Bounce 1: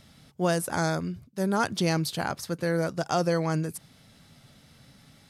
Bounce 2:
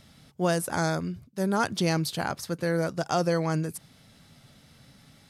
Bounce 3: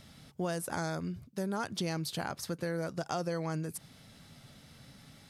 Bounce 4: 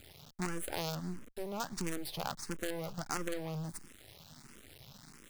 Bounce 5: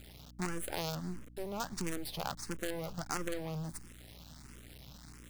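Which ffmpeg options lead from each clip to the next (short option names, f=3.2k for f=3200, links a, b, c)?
-af anull
-af "acompressor=threshold=-34dB:ratio=3"
-filter_complex "[0:a]asoftclip=type=tanh:threshold=-28.5dB,acrusher=bits=6:dc=4:mix=0:aa=0.000001,asplit=2[a][b];[b]afreqshift=1.5[c];[a][c]amix=inputs=2:normalize=1,volume=4dB"
-af "aeval=exprs='val(0)+0.002*(sin(2*PI*60*n/s)+sin(2*PI*2*60*n/s)/2+sin(2*PI*3*60*n/s)/3+sin(2*PI*4*60*n/s)/4+sin(2*PI*5*60*n/s)/5)':c=same"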